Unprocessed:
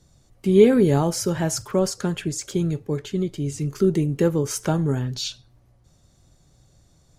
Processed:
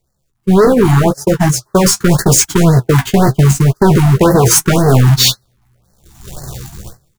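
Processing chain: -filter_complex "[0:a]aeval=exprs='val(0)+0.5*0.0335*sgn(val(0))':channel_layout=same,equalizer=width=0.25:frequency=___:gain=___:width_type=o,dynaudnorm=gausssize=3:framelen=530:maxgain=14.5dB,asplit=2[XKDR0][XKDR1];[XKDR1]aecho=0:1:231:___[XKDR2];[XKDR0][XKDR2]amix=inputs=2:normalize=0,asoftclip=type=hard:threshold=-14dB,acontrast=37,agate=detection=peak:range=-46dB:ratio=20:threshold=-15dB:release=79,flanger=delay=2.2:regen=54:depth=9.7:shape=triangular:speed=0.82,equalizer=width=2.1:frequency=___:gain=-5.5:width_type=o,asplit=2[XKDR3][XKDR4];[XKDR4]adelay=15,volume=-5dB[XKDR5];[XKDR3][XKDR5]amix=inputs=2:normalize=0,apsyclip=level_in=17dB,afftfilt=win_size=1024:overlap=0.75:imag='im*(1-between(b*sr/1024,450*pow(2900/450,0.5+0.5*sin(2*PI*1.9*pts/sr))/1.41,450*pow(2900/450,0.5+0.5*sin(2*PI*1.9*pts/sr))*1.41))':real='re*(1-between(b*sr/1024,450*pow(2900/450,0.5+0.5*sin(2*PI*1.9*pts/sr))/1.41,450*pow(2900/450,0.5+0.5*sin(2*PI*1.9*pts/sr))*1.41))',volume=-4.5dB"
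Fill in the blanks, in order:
290, -13, 0.106, 4000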